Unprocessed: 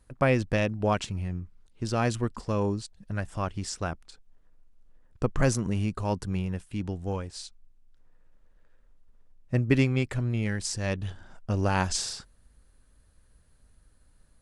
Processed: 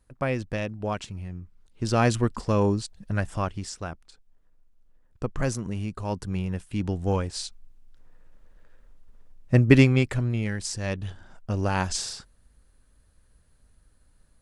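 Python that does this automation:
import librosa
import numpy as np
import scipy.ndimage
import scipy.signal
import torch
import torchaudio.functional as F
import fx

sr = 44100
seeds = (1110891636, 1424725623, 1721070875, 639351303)

y = fx.gain(x, sr, db=fx.line((1.35, -4.0), (1.95, 5.0), (3.3, 5.0), (3.76, -3.0), (5.88, -3.0), (7.17, 7.0), (9.77, 7.0), (10.51, 0.0)))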